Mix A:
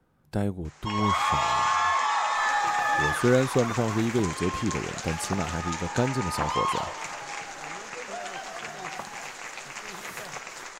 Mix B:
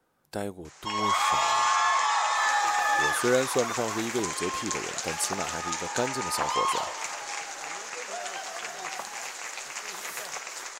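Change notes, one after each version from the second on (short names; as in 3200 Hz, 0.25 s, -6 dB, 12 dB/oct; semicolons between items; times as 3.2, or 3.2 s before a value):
master: add tone controls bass -14 dB, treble +6 dB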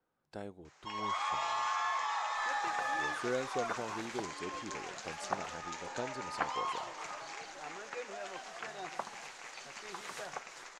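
speech -11.0 dB; first sound -9.5 dB; master: add air absorption 93 m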